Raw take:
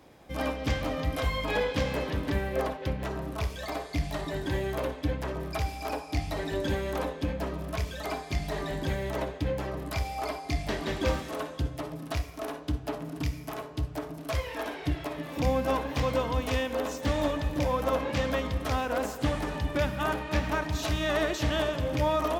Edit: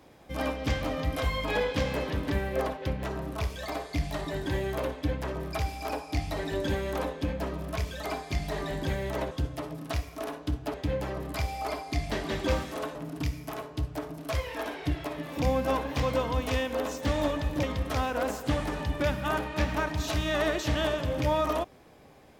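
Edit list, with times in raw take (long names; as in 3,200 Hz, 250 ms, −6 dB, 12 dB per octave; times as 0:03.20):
0:11.52–0:12.95: move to 0:09.31
0:17.63–0:18.38: remove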